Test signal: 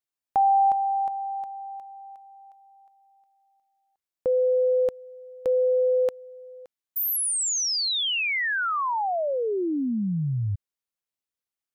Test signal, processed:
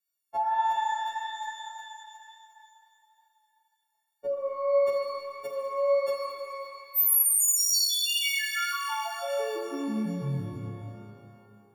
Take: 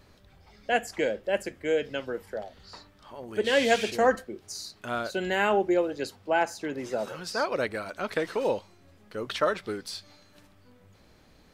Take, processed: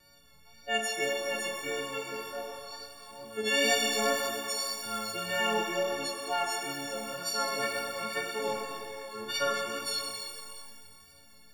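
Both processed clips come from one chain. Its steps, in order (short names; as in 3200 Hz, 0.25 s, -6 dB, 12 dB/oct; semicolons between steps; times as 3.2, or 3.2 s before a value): frequency quantiser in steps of 4 st; notches 50/100/150/200/250/300/350 Hz; wow and flutter 2.1 Hz 31 cents; shimmer reverb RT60 2.2 s, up +12 st, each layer -8 dB, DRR 1 dB; gain -8 dB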